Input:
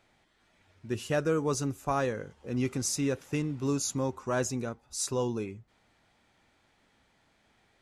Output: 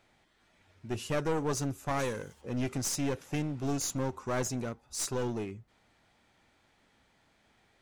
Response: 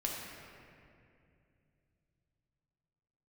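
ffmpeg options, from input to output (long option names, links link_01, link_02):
-filter_complex "[0:a]asplit=3[link_01][link_02][link_03];[link_01]afade=type=out:start_time=1.98:duration=0.02[link_04];[link_02]aemphasis=mode=production:type=75fm,afade=type=in:start_time=1.98:duration=0.02,afade=type=out:start_time=2.4:duration=0.02[link_05];[link_03]afade=type=in:start_time=2.4:duration=0.02[link_06];[link_04][link_05][link_06]amix=inputs=3:normalize=0,aeval=exprs='clip(val(0),-1,0.0224)':channel_layout=same"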